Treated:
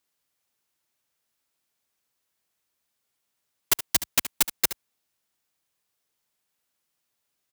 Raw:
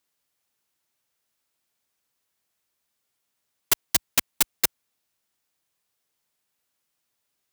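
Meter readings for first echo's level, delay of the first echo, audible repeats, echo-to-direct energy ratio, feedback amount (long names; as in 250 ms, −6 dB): −13.0 dB, 72 ms, 1, −13.0 dB, repeats not evenly spaced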